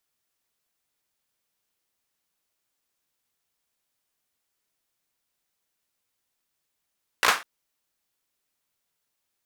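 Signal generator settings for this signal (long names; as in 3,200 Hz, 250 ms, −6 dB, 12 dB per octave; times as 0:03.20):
synth clap length 0.20 s, bursts 4, apart 17 ms, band 1,300 Hz, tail 0.28 s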